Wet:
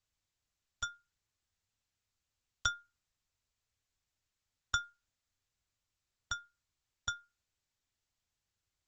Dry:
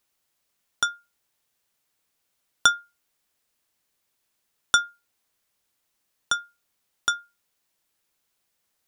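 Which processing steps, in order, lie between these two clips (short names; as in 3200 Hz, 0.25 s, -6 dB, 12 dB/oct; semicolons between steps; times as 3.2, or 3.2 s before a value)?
EQ curve 110 Hz 0 dB, 190 Hz -30 dB, 1700 Hz -19 dB; gain +6 dB; Opus 10 kbps 48000 Hz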